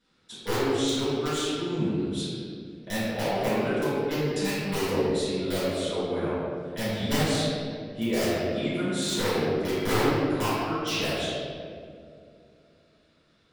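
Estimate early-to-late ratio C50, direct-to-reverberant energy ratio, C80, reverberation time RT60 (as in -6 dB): -4.5 dB, -14.5 dB, -2.0 dB, 2.4 s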